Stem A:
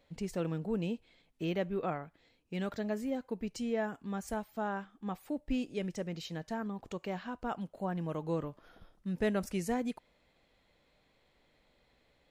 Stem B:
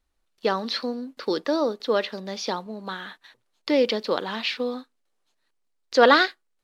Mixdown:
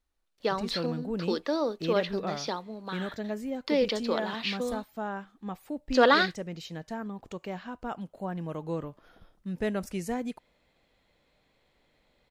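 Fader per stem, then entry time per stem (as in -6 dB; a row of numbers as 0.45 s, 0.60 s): +1.0 dB, -5.0 dB; 0.40 s, 0.00 s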